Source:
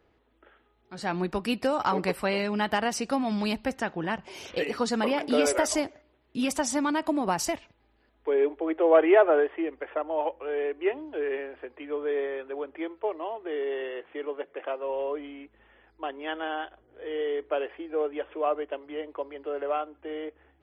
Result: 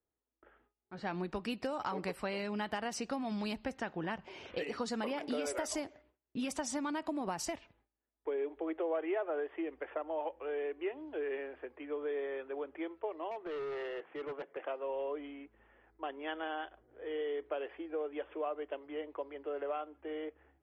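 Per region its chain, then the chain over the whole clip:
13.31–14.57 HPF 120 Hz + bell 970 Hz +3 dB 1.7 oct + overloaded stage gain 32 dB
whole clip: low-pass opened by the level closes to 1900 Hz, open at -22.5 dBFS; gate with hold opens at -53 dBFS; compressor 4:1, threshold -29 dBFS; gain -5 dB

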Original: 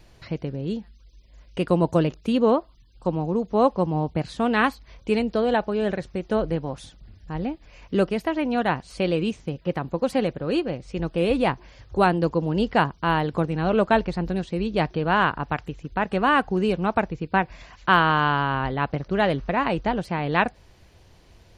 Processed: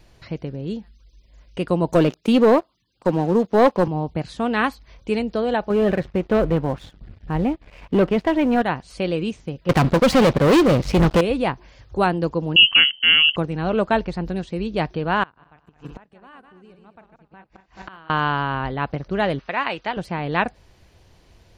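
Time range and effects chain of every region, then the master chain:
1.93–3.88 HPF 170 Hz + sample leveller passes 2
5.7–8.62 LPF 2900 Hz + sample leveller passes 2
9.69–11.21 LPF 5400 Hz + sample leveller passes 5
12.56–13.36 resonant low shelf 490 Hz +8.5 dB, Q 3 + inverted band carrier 3100 Hz
15.23–18.1 regenerating reverse delay 0.108 s, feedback 49%, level -6.5 dB + flipped gate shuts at -22 dBFS, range -27 dB
19.39–19.97 LPF 3300 Hz + tilt +4.5 dB/oct
whole clip: dry

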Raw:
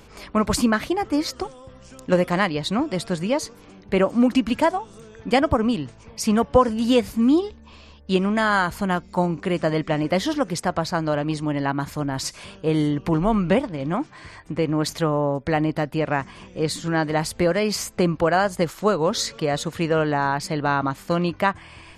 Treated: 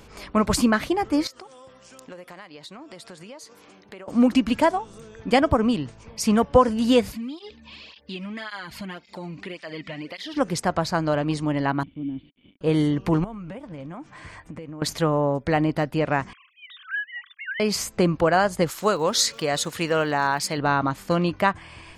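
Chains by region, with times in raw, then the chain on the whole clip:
1.27–4.08 HPF 500 Hz 6 dB/oct + compressor, threshold -39 dBFS
7.12–10.37 band shelf 3000 Hz +10 dB + compressor 3:1, threshold -33 dBFS + tape flanging out of phase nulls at 1.8 Hz, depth 2.7 ms
11.83–12.61 bell 2300 Hz -14.5 dB 0.25 oct + requantised 6-bit, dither none + vocal tract filter i
13.24–14.82 bell 4400 Hz -6 dB 0.61 oct + notch 380 Hz, Q 7.5 + compressor 12:1, threshold -33 dBFS
16.33–17.6 sine-wave speech + rippled Chebyshev high-pass 1100 Hz, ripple 3 dB + dynamic EQ 1600 Hz, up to +4 dB, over -43 dBFS, Q 3.9
18.69–20.57 tilt +2 dB/oct + crackle 380/s -43 dBFS
whole clip: dry

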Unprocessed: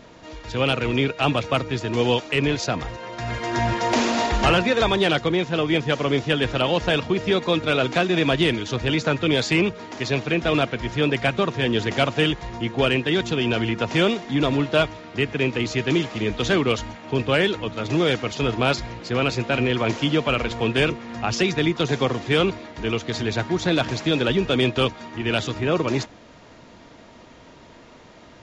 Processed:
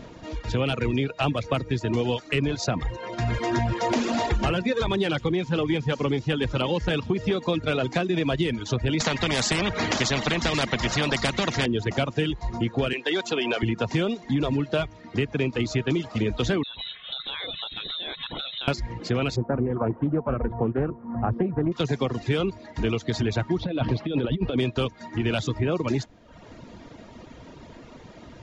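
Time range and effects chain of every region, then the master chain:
4.76–7.42 notch 690 Hz, Q 6 + thin delay 83 ms, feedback 83%, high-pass 3200 Hz, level -18 dB + core saturation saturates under 370 Hz
9–11.66 small resonant body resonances 200/590/1900 Hz, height 13 dB, ringing for 20 ms + spectral compressor 4:1
12.93–13.63 HPF 450 Hz + three-band squash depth 70%
16.63–18.68 inverted band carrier 3900 Hz + compressor 16:1, threshold -28 dBFS
19.36–21.72 LPF 1300 Hz 24 dB/oct + Doppler distortion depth 0.26 ms
23.58–24.58 LPF 3900 Hz 24 dB/oct + bell 1900 Hz -6.5 dB 1.3 oct + negative-ratio compressor -24 dBFS, ratio -0.5
whole clip: reverb removal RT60 0.75 s; low shelf 410 Hz +8 dB; compressor, threshold -21 dBFS

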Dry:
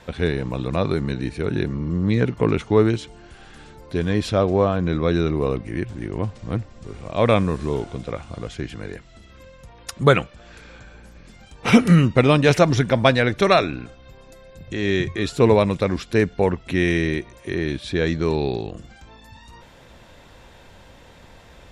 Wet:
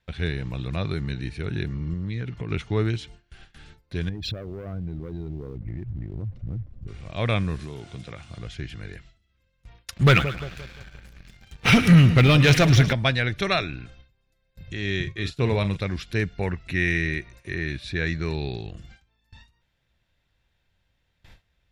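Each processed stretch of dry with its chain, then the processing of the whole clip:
1.93–2.51 LPF 8000 Hz + compressor, threshold -21 dBFS
4.09–6.88 formant sharpening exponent 2 + sample leveller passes 1 + compressor 16:1, threshold -23 dBFS
7.59–8.39 HPF 93 Hz + compressor 3:1, threshold -25 dBFS + high shelf 7000 Hz +7.5 dB
9.92–12.93 split-band echo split 970 Hz, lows 0.175 s, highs 0.108 s, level -14.5 dB + sample leveller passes 2
15–15.77 expander -26 dBFS + doubler 40 ms -11 dB
16.31–18.33 dynamic EQ 1800 Hz, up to +5 dB, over -38 dBFS, Q 1.6 + notch 3200 Hz, Q 6.7
whole clip: gate with hold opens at -34 dBFS; graphic EQ 250/500/1000/8000 Hz -8/-9/-9/-8 dB

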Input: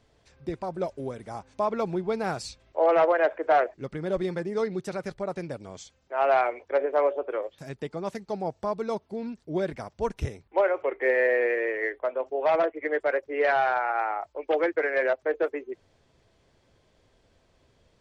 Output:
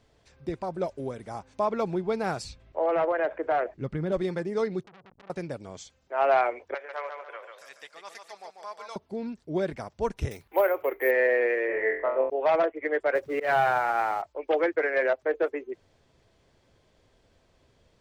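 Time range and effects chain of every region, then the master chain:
2.44–4.12 tone controls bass +7 dB, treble -7 dB + compressor 2:1, threshold -25 dBFS
4.83–5.3 compressor 16:1, threshold -36 dBFS + Gaussian blur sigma 13 samples + core saturation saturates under 2800 Hz
6.74–8.96 HPF 1400 Hz + feedback echo 0.143 s, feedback 39%, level -5.5 dB
10.31–11.11 careless resampling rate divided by 3×, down none, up hold + mismatched tape noise reduction encoder only
11.67–12.3 LPF 2300 Hz + flutter echo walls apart 3.9 m, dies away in 0.48 s
13.15–14.22 G.711 law mismatch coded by mu + bell 150 Hz +13.5 dB 0.86 oct + auto swell 0.132 s
whole clip: dry

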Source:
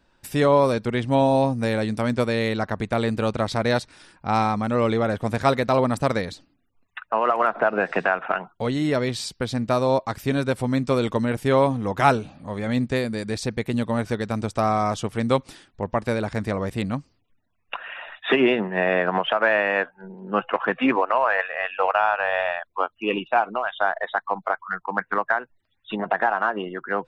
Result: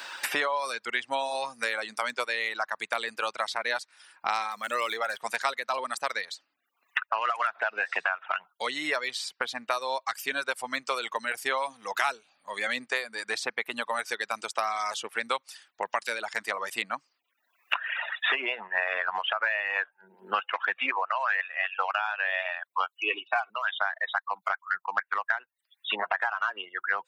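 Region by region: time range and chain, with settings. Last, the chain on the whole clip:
4.51–5.18 median filter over 5 samples + high shelf 4800 Hz +7 dB
22.89–23.5 elliptic high-pass 200 Hz + comb 2.7 ms, depth 71%
whole clip: reverb removal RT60 1.4 s; HPF 1200 Hz 12 dB/oct; three-band squash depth 100%

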